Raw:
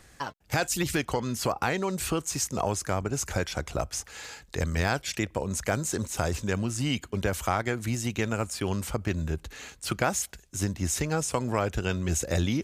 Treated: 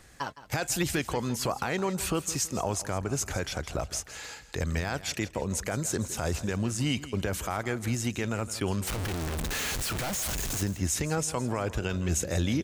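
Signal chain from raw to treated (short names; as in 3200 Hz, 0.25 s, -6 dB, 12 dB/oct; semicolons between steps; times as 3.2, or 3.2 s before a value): 8.87–10.62 infinite clipping; limiter -17 dBFS, peak gain reduction 6.5 dB; on a send: feedback echo 0.164 s, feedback 37%, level -15.5 dB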